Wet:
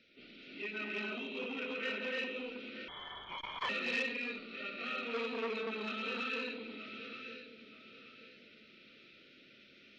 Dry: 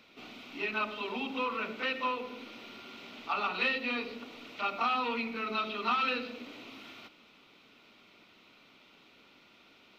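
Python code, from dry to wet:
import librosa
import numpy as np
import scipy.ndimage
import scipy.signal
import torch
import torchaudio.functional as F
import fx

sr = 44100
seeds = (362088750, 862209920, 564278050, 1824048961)

y = scipy.signal.sosfilt(scipy.signal.cheby1(2, 1.0, [540.0, 1600.0], 'bandstop', fs=sr, output='sos'), x)
y = fx.spec_gate(y, sr, threshold_db=-25, keep='strong')
y = fx.highpass(y, sr, hz=290.0, slope=12, at=(1.43, 1.87))
y = fx.peak_eq(y, sr, hz=460.0, db=14.0, octaves=0.36, at=(5.13, 5.61))
y = fx.rider(y, sr, range_db=3, speed_s=2.0)
y = fx.echo_feedback(y, sr, ms=929, feedback_pct=31, wet_db=-12.0)
y = fx.rev_gated(y, sr, seeds[0], gate_ms=370, shape='rising', drr_db=-3.0)
y = fx.freq_invert(y, sr, carrier_hz=3600, at=(2.88, 3.69))
y = fx.transformer_sat(y, sr, knee_hz=1600.0)
y = y * librosa.db_to_amplitude(-7.0)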